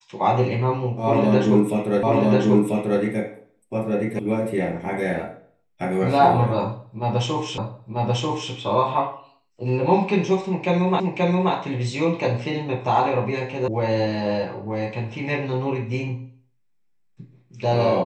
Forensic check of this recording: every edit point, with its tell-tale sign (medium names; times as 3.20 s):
2.03 s: repeat of the last 0.99 s
4.19 s: sound stops dead
7.58 s: repeat of the last 0.94 s
11.00 s: repeat of the last 0.53 s
13.68 s: sound stops dead